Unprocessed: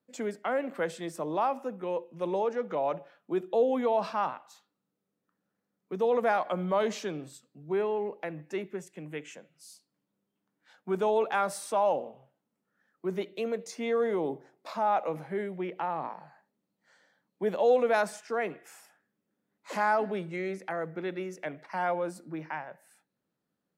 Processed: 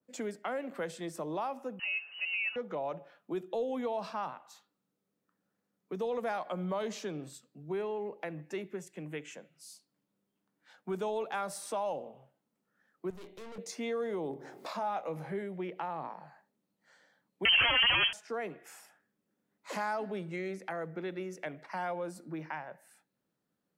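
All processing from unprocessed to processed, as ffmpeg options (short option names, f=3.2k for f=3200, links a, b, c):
-filter_complex "[0:a]asettb=1/sr,asplit=3[a][b][c];[a]atrim=end=1.794[d];[b]atrim=start=1.79:end=2.56,asetpts=PTS-STARTPTS,afade=t=in:d=0.004:c=qsin,afade=t=out:st=0.766:d=0.004:c=qsin,aeval=exprs='val(0)+0.5*0.00398*sgn(val(0))':c=same,lowpass=f=2.6k:t=q:w=0.5098,lowpass=f=2.6k:t=q:w=0.6013,lowpass=f=2.6k:t=q:w=0.9,lowpass=f=2.6k:t=q:w=2.563,afreqshift=-3100,equalizer=f=230:w=0.91:g=-5[e];[c]atrim=start=2.556[f];[d][e]acrossfade=d=0.004:c1=hsin:c2=qsin[g];[g][f]acrossfade=d=0.004:c1=qsin:c2=hsin,asettb=1/sr,asplit=3[h][i][j];[h]atrim=end=13.104[k];[i]atrim=start=13.1:end=13.58,asetpts=PTS-STARTPTS,afade=t=in:d=0.004:c=qsin,afade=t=out:st=0.476:d=0.004:c=qsin,aeval=exprs='(tanh(200*val(0)+0.55)-tanh(0.55))/200':c=same,asplit=2[l][m];[m]adelay=27,volume=-10.5dB[n];[l][n]amix=inputs=2:normalize=0,atrim=end_sample=21168[o];[j]atrim=start=13.576[p];[k][o]acrossfade=d=0.004:c1=hsin:c2=qsin[q];[q][p]acrossfade=d=0.004:c1=qsin:c2=hsin,asettb=1/sr,asplit=3[r][s][t];[r]atrim=end=14.314[u];[s]atrim=start=14.31:end=15.42,asetpts=PTS-STARTPTS,afade=t=in:d=0.004:c=qsin,afade=t=out:st=1.106:d=0.004:c=qsin,acompressor=mode=upward:threshold=-34dB:ratio=2.5:attack=3.2:release=140:knee=2.83:detection=peak,asplit=2[v][w];[w]adelay=25,volume=-10.5dB[x];[v][x]amix=inputs=2:normalize=0,atrim=end_sample=48951[y];[t]atrim=start=15.416[z];[u][y]acrossfade=d=0.004:c1=hsin:c2=qsin[aa];[aa][z]acrossfade=d=0.004:c1=qsin:c2=hsin,asettb=1/sr,asplit=3[ab][ac][ad];[ab]atrim=end=17.454[ae];[ac]atrim=start=17.45:end=18.13,asetpts=PTS-STARTPTS,afade=t=in:d=0.004:c=qsin,afade=t=out:st=0.676:d=0.004:c=qsin,aeval=exprs='0.178*sin(PI/2*5.01*val(0)/0.178)':c=same,lowpass=f=2.8k:t=q:w=0.5098,lowpass=f=2.8k:t=q:w=0.6013,lowpass=f=2.8k:t=q:w=0.9,lowpass=f=2.8k:t=q:w=2.563,afreqshift=-3300[af];[ad]atrim=start=18.126[ag];[ae][af]acrossfade=d=0.004:c1=hsin:c2=qsin[ah];[ah][ag]acrossfade=d=0.004:c1=qsin:c2=hsin,acrossover=split=140|3000[ai][aj][ak];[aj]acompressor=threshold=-38dB:ratio=2[al];[ai][al][ak]amix=inputs=3:normalize=0,adynamicequalizer=threshold=0.00398:dfrequency=1700:dqfactor=0.7:tfrequency=1700:tqfactor=0.7:attack=5:release=100:ratio=0.375:range=2:mode=cutabove:tftype=highshelf"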